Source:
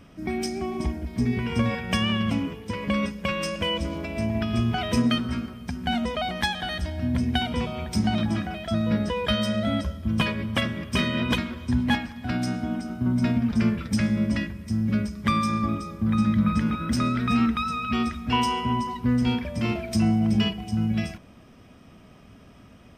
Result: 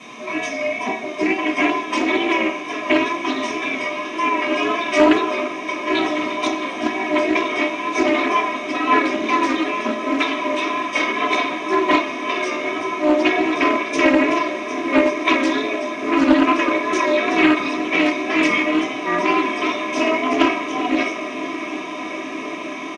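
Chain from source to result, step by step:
gate on every frequency bin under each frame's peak −20 dB weak
comb filter 3.1 ms, depth 87%
tape wow and flutter 61 cents
bit-depth reduction 8 bits, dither triangular
loudspeaker in its box 290–7,400 Hz, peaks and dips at 310 Hz +7 dB, 1,000 Hz +8 dB, 1,500 Hz −3 dB, 2,400 Hz +5 dB, 4,400 Hz −9 dB
feedback delay with all-pass diffusion 1,222 ms, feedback 79%, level −12.5 dB
convolution reverb, pre-delay 3 ms, DRR −6.5 dB
highs frequency-modulated by the lows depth 0.35 ms
level −1 dB

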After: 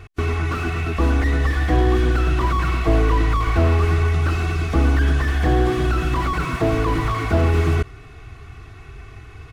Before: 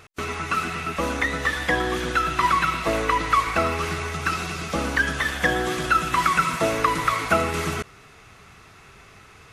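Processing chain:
bass and treble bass +14 dB, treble −7 dB
comb filter 2.7 ms, depth 76%
slew-rate limiting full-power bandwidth 83 Hz

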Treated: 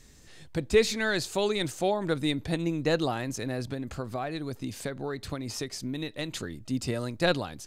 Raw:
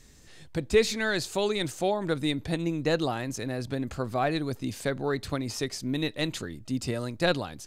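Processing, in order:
0:03.63–0:06.34: downward compressor, threshold −30 dBFS, peak gain reduction 8 dB

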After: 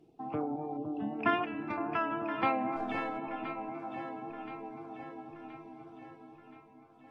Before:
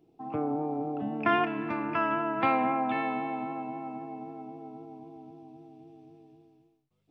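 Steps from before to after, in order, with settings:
0:02.76–0:03.18: gain on one half-wave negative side −3 dB
reverb reduction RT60 0.98 s
in parallel at 0 dB: downward compressor 10 to 1, threshold −43 dBFS, peak gain reduction 21.5 dB
0:00.77–0:00.99: on the sum: gain on a spectral selection 610–2,600 Hz −28 dB
on a send: delay that swaps between a low-pass and a high-pass 512 ms, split 980 Hz, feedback 70%, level −7 dB
on the sum: level −4 dB
AAC 32 kbit/s 44,100 Hz

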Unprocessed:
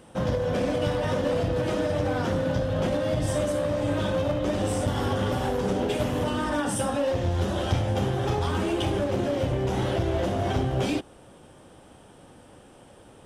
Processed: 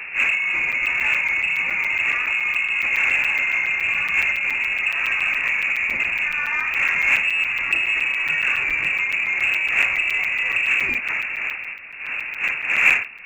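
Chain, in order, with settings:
wind on the microphone 590 Hz −30 dBFS
voice inversion scrambler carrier 2,700 Hz
in parallel at −4.5 dB: soft clipping −19.5 dBFS, distortion −13 dB
on the sum: regular buffer underruns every 0.14 s, samples 256, zero, from 0:00.72

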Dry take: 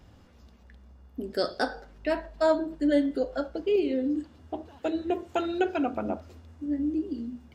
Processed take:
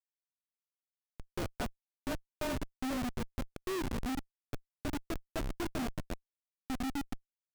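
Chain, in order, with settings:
loudspeaker in its box 160–6,100 Hz, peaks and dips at 170 Hz −5 dB, 540 Hz −7 dB, 2,500 Hz +4 dB
frequency shifter −32 Hz
comparator with hysteresis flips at −26 dBFS
level −3 dB

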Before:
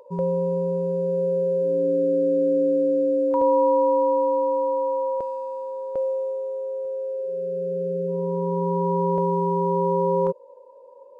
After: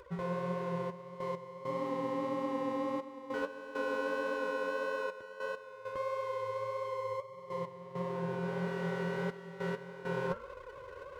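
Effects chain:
lower of the sound and its delayed copy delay 0.58 ms
high-pass filter 48 Hz
hum removal 226.9 Hz, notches 14
reversed playback
downward compressor 4 to 1, threshold −38 dBFS, peak gain reduction 16 dB
reversed playback
gate pattern "xxxxxx..x..xxx" 100 BPM −12 dB
flanger 1.6 Hz, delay 2.2 ms, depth 9.2 ms, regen +41%
level +6.5 dB

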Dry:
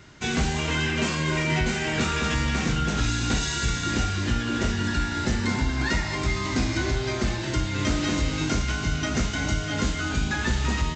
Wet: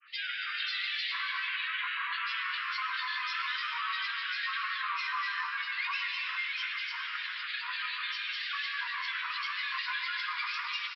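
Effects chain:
Chebyshev band-pass filter 1,400–3,600 Hz, order 5
brickwall limiter −26 dBFS, peak gain reduction 8 dB
granular cloud, pitch spread up and down by 7 semitones
single-tap delay 273 ms −13 dB
reverb whose tail is shaped and stops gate 490 ms flat, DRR 3 dB

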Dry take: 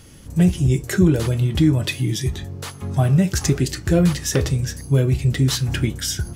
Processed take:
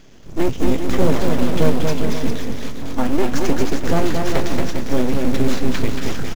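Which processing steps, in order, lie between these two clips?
full-wave rectification
high-shelf EQ 4,700 Hz −7.5 dB
bouncing-ball delay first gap 230 ms, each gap 0.75×, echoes 5
downsampling to 16,000 Hz
in parallel at −3.5 dB: floating-point word with a short mantissa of 2 bits
on the sum: level −3 dB

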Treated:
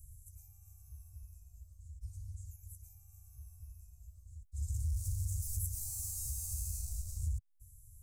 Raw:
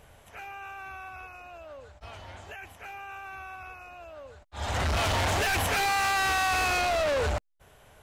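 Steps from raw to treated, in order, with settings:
inverse Chebyshev band-stop filter 250–3,400 Hz, stop band 50 dB
downward compressor 2.5 to 1, threshold −42 dBFS, peak gain reduction 10.5 dB
level +5 dB

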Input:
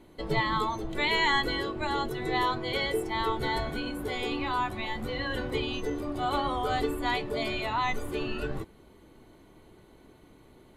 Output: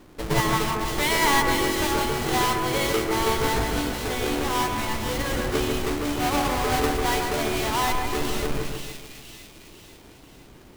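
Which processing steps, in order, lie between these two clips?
each half-wave held at its own peak
on a send: echo with a time of its own for lows and highs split 2,300 Hz, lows 147 ms, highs 501 ms, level −4.5 dB

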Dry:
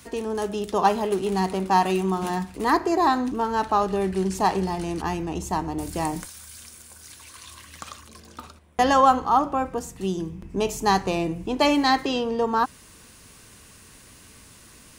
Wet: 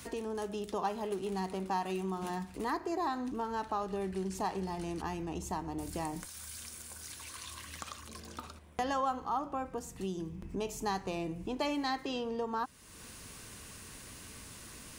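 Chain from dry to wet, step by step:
downward compressor 2 to 1, threshold −43 dBFS, peak gain reduction 16.5 dB
surface crackle 92 per second −60 dBFS

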